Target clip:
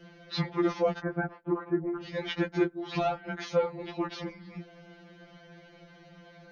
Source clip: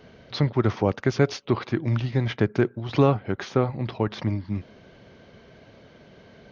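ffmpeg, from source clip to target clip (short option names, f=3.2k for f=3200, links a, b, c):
-filter_complex "[0:a]asplit=3[a][b][c];[a]afade=t=out:st=1.01:d=0.02[d];[b]lowpass=f=1.4k:w=0.5412,lowpass=f=1.4k:w=1.3066,afade=t=in:st=1.01:d=0.02,afade=t=out:st=2.02:d=0.02[e];[c]afade=t=in:st=2.02:d=0.02[f];[d][e][f]amix=inputs=3:normalize=0,afftfilt=real='re*2.83*eq(mod(b,8),0)':imag='im*2.83*eq(mod(b,8),0)':win_size=2048:overlap=0.75"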